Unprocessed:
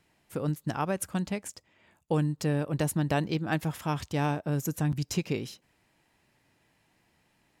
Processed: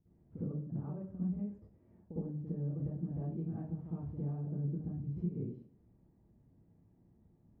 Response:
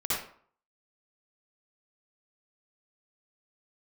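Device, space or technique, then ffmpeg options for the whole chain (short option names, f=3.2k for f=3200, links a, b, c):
television next door: -filter_complex "[0:a]acompressor=threshold=-41dB:ratio=5,lowpass=270[a];[1:a]atrim=start_sample=2205[b];[a][b]afir=irnorm=-1:irlink=0"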